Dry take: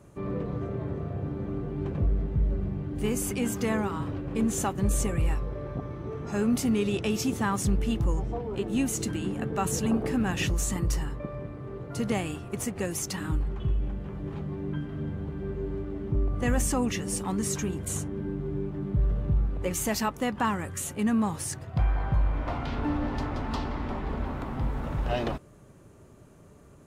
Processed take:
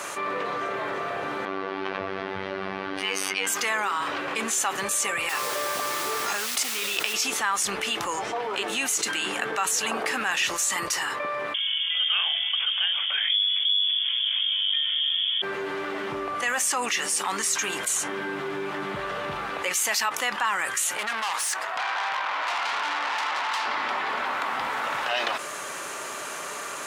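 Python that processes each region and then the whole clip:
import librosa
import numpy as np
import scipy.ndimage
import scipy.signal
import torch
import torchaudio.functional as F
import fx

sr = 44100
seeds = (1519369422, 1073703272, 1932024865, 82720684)

y = fx.chain(x, sr, fx.savgol(points=15),
    fx.robotise(hz=96.2), at=(1.45, 3.47))
y = fx.chain(y, sr, fx.hum_notches(base_hz=50, count=3),
    fx.over_compress(threshold_db=-33.0, ratio=-1.0),
    fx.quant_dither(seeds[0], bits=8, dither='triangular'), at=(5.29, 7.14))
y = fx.chain(y, sr, fx.freq_invert(carrier_hz=3400),
    fx.air_absorb(metres=180.0), at=(11.54, 15.42))
y = fx.chain(y, sr, fx.highpass(hz=270.0, slope=12),
    fx.peak_eq(hz=970.0, db=8.5, octaves=1.1),
    fx.tube_stage(drive_db=36.0, bias=0.75), at=(20.97, 23.66))
y = scipy.signal.sosfilt(scipy.signal.butter(2, 1300.0, 'highpass', fs=sr, output='sos'), y)
y = fx.high_shelf(y, sr, hz=10000.0, db=-9.0)
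y = fx.env_flatten(y, sr, amount_pct=70)
y = y * librosa.db_to_amplitude(4.0)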